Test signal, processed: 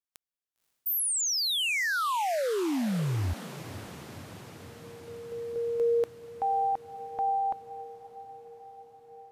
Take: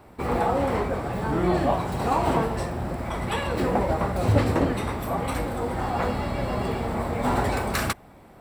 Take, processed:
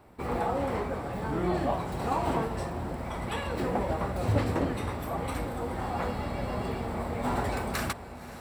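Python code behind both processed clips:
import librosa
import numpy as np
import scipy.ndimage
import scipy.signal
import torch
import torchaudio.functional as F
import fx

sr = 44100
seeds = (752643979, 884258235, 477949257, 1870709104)

y = fx.echo_diffused(x, sr, ms=545, feedback_pct=69, wet_db=-15.0)
y = F.gain(torch.from_numpy(y), -6.0).numpy()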